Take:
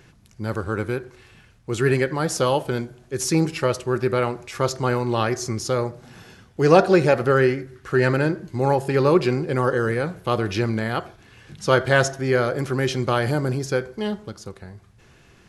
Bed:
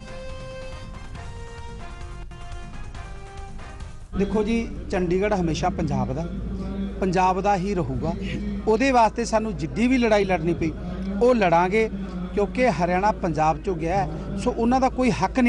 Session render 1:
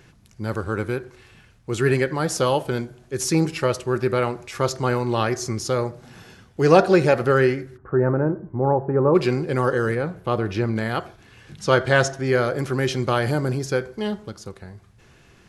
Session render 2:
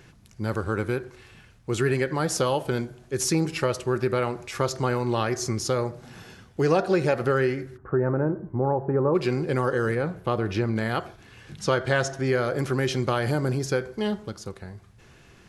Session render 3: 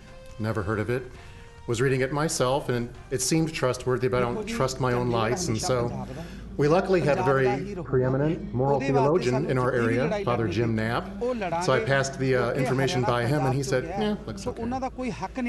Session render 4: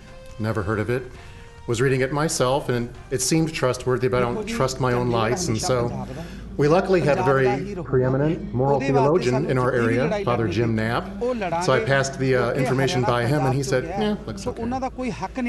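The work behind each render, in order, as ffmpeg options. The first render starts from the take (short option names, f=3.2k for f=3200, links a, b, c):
-filter_complex "[0:a]asplit=3[a][b][c];[a]afade=t=out:st=7.76:d=0.02[d];[b]lowpass=f=1.2k:w=0.5412,lowpass=f=1.2k:w=1.3066,afade=t=in:st=7.76:d=0.02,afade=t=out:st=9.14:d=0.02[e];[c]afade=t=in:st=9.14:d=0.02[f];[d][e][f]amix=inputs=3:normalize=0,asettb=1/sr,asplit=3[g][h][i];[g]atrim=end=9.954[j];[h]atrim=start=9.95:end=10.76,asetpts=PTS-STARTPTS,afade=t=in:d=0.004:c=qsin,afade=t=out:st=0.806:d=0.004:c=qsin,highshelf=f=2.6k:g=-9.5[k];[i]atrim=start=10.756[l];[j][k]acrossfade=d=0.004:c1=hsin:c2=qsin[m];[m][l]acrossfade=d=0.004:c1=qsin:c2=hsin,asettb=1/sr,asplit=3[n][o][p];[n]atrim=end=11.644[q];[o]atrim=start=11.64:end=12.27,asetpts=PTS-STARTPTS,afade=t=in:d=0.004:c=qsin,afade=t=out:st=0.626:d=0.004:c=qsin,lowpass=9.3k[r];[p]atrim=start=12.266[s];[q][r]acrossfade=d=0.004:c1=hsin:c2=qsin[t];[t][s]acrossfade=d=0.004:c1=qsin:c2=hsin"
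-af "acompressor=threshold=-21dB:ratio=2.5"
-filter_complex "[1:a]volume=-10dB[a];[0:a][a]amix=inputs=2:normalize=0"
-af "volume=3.5dB"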